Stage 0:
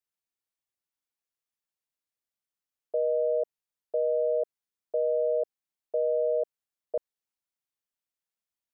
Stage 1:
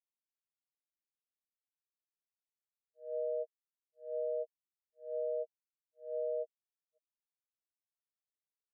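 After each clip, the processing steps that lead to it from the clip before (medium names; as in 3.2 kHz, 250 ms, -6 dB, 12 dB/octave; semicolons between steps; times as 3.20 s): slow attack 218 ms; loudest bins only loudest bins 2; three bands expanded up and down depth 100%; trim -5.5 dB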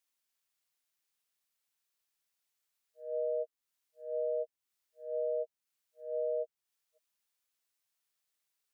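tape noise reduction on one side only encoder only; trim +2.5 dB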